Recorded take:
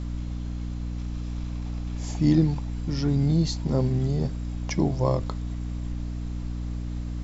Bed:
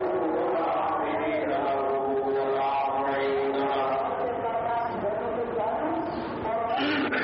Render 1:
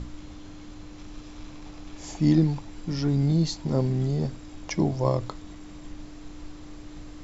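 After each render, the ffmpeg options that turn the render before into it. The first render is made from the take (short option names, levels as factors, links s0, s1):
-af "bandreject=f=60:t=h:w=6,bandreject=f=120:t=h:w=6,bandreject=f=180:t=h:w=6,bandreject=f=240:t=h:w=6"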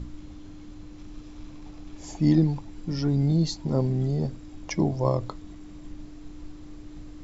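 -af "afftdn=nr=6:nf=-43"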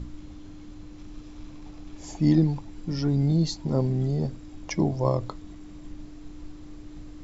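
-af anull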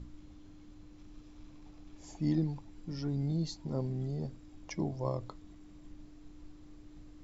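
-af "volume=0.299"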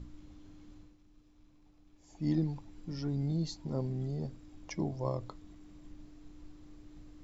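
-filter_complex "[0:a]asplit=3[s0][s1][s2];[s0]atrim=end=0.98,asetpts=PTS-STARTPTS,afade=t=out:st=0.76:d=0.22:silence=0.298538[s3];[s1]atrim=start=0.98:end=2.09,asetpts=PTS-STARTPTS,volume=0.299[s4];[s2]atrim=start=2.09,asetpts=PTS-STARTPTS,afade=t=in:d=0.22:silence=0.298538[s5];[s3][s4][s5]concat=n=3:v=0:a=1"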